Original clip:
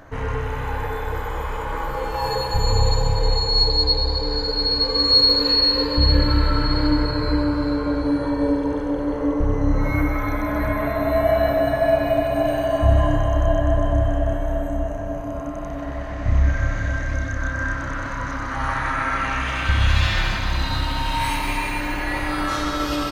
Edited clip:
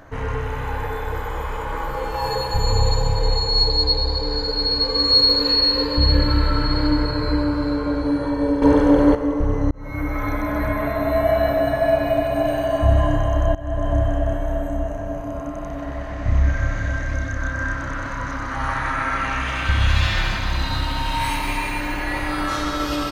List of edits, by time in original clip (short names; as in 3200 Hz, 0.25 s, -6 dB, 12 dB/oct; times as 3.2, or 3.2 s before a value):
8.62–9.15 gain +9.5 dB
9.71–10.25 fade in linear
13.55–13.93 fade in, from -19 dB